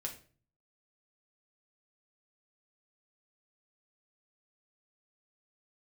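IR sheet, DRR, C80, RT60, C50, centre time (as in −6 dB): 0.5 dB, 16.0 dB, 0.40 s, 10.5 dB, 15 ms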